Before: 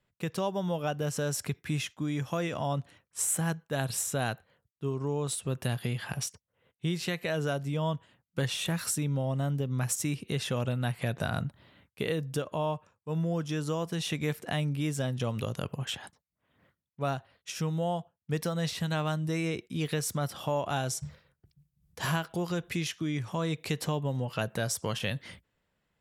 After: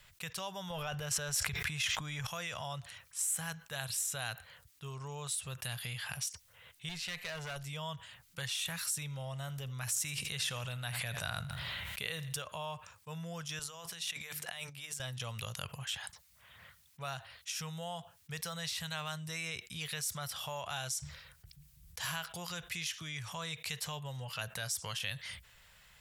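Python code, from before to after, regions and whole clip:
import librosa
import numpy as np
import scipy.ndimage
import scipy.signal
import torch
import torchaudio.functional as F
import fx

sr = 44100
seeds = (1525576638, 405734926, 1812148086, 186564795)

y = fx.chain(x, sr, fx.high_shelf(hz=4100.0, db=-8.0),
    fx.transient(attack_db=2, sustain_db=11),
    fx.env_flatten(amount_pct=100), at=(0.7, 2.27))
y = fx.chain(y, sr, fx.lowpass(hz=3700.0, slope=6),
    fx.clip_hard(threshold_db=-29.5), at=(6.89, 7.56))
y = fx.chain(y, sr, fx.echo_feedback(ms=82, feedback_pct=40, wet_db=-19),
    fx.sustainer(db_per_s=21.0), at=(8.97, 12.36))
y = fx.chain(y, sr, fx.hum_notches(base_hz=50, count=8),
    fx.over_compress(threshold_db=-37.0, ratio=-0.5),
    fx.highpass(hz=250.0, slope=6), at=(13.59, 15.0))
y = fx.tone_stack(y, sr, knobs='10-0-10')
y = fx.env_flatten(y, sr, amount_pct=50)
y = y * 10.0 ** (-5.5 / 20.0)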